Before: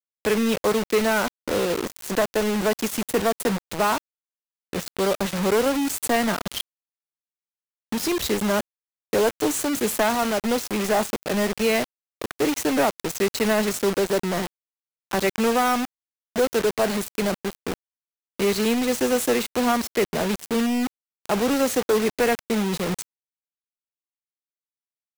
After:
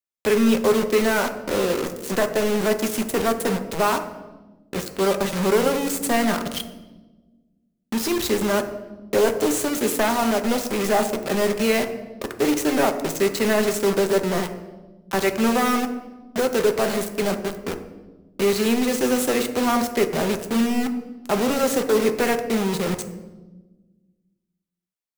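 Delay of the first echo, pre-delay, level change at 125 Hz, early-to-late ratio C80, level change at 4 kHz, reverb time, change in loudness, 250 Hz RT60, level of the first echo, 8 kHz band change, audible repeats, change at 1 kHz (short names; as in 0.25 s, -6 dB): none, 5 ms, +1.5 dB, 12.5 dB, +0.5 dB, 1.2 s, +1.5 dB, 1.9 s, none, +0.5 dB, none, +1.0 dB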